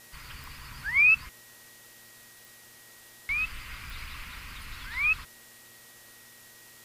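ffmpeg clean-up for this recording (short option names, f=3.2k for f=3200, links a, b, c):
-af "adeclick=t=4,bandreject=f=118:t=h:w=4,bandreject=f=236:t=h:w=4,bandreject=f=354:t=h:w=4,bandreject=f=472:t=h:w=4,bandreject=f=590:t=h:w=4,bandreject=f=1.9k:w=30,afwtdn=0.0025"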